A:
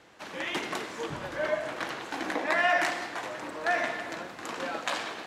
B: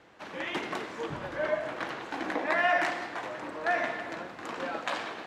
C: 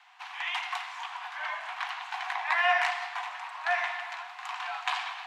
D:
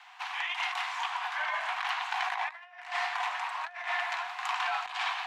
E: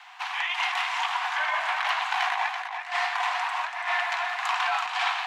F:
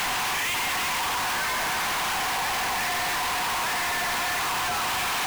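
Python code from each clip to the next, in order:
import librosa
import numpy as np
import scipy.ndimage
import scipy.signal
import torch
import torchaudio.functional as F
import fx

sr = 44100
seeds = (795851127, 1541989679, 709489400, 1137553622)

y1 = fx.high_shelf(x, sr, hz=4800.0, db=-11.5)
y2 = scipy.signal.sosfilt(scipy.signal.cheby1(6, 6, 710.0, 'highpass', fs=sr, output='sos'), y1)
y2 = y2 * librosa.db_to_amplitude(5.5)
y3 = fx.over_compress(y2, sr, threshold_db=-35.0, ratio=-0.5)
y3 = y3 * librosa.db_to_amplitude(2.0)
y4 = y3 + 10.0 ** (-6.5 / 20.0) * np.pad(y3, (int(333 * sr / 1000.0), 0))[:len(y3)]
y4 = y4 * librosa.db_to_amplitude(5.0)
y5 = np.sign(y4) * np.sqrt(np.mean(np.square(y4)))
y5 = y5 * librosa.db_to_amplitude(1.5)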